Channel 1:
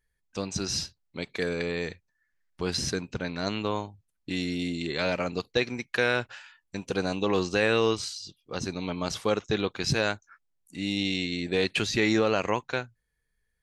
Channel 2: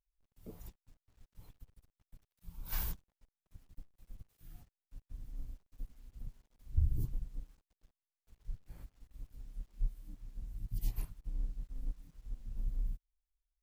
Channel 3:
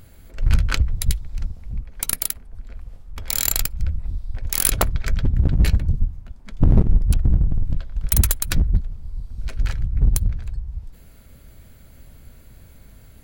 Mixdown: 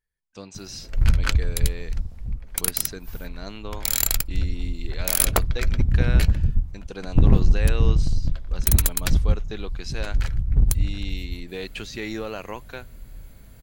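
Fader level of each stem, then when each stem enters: −7.5, −7.0, −1.0 decibels; 0.00, 0.35, 0.55 seconds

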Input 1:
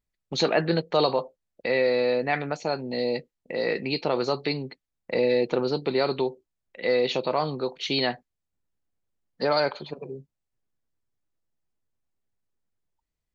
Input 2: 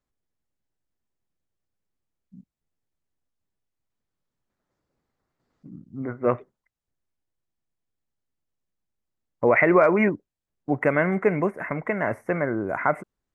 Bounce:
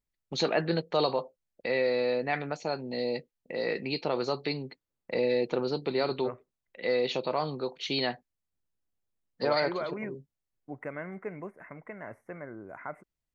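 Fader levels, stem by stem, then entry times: −4.5, −17.0 decibels; 0.00, 0.00 seconds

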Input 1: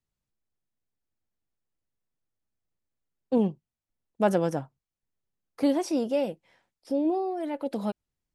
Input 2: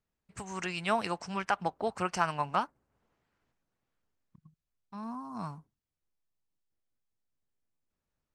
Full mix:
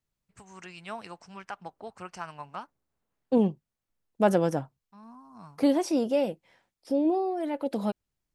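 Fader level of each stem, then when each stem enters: +1.0, −9.5 decibels; 0.00, 0.00 seconds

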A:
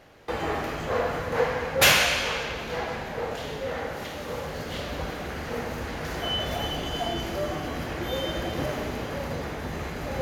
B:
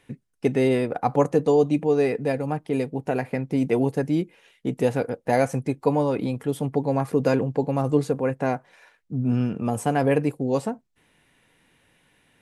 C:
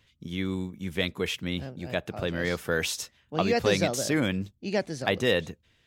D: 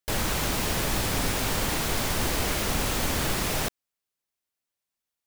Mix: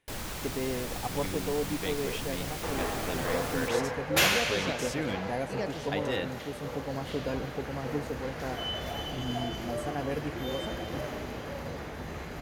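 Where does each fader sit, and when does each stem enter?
−6.0, −13.0, −8.5, −10.5 decibels; 2.35, 0.00, 0.85, 0.00 seconds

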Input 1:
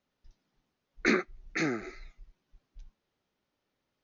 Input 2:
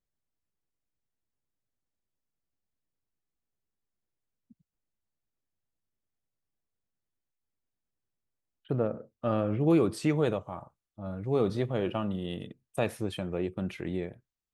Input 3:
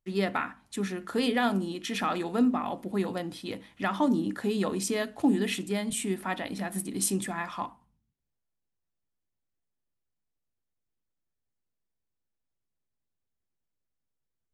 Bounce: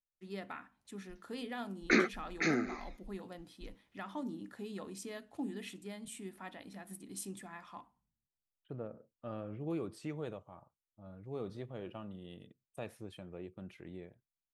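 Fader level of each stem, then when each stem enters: −1.5, −14.5, −15.5 decibels; 0.85, 0.00, 0.15 seconds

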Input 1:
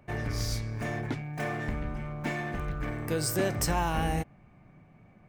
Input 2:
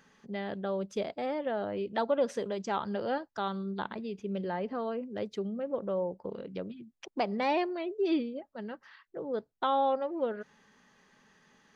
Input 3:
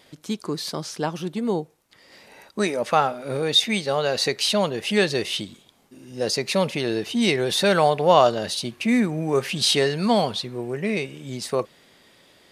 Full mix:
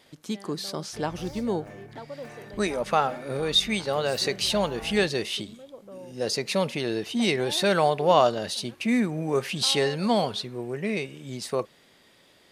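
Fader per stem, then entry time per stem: −13.0, −11.5, −3.5 decibels; 0.85, 0.00, 0.00 seconds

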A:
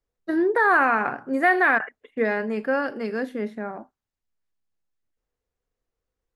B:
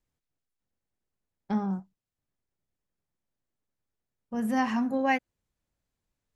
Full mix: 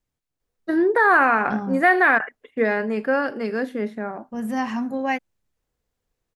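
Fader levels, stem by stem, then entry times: +2.5, +1.5 decibels; 0.40, 0.00 seconds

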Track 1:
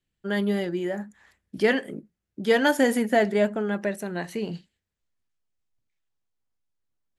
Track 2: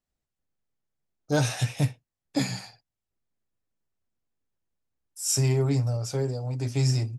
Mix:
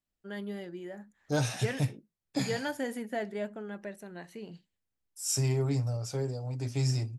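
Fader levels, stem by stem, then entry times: −13.5, −5.0 decibels; 0.00, 0.00 seconds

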